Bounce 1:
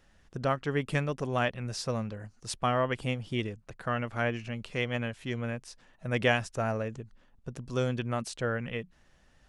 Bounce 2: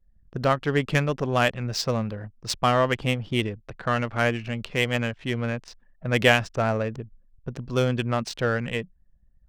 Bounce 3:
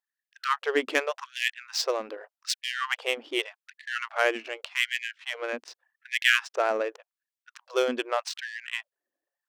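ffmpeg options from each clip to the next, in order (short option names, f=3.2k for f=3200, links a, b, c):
-af "anlmdn=0.000631,equalizer=f=5k:t=o:w=1.6:g=6,adynamicsmooth=sensitivity=5:basefreq=2.5k,volume=6.5dB"
-af "afftfilt=real='re*gte(b*sr/1024,250*pow(1700/250,0.5+0.5*sin(2*PI*0.85*pts/sr)))':imag='im*gte(b*sr/1024,250*pow(1700/250,0.5+0.5*sin(2*PI*0.85*pts/sr)))':win_size=1024:overlap=0.75"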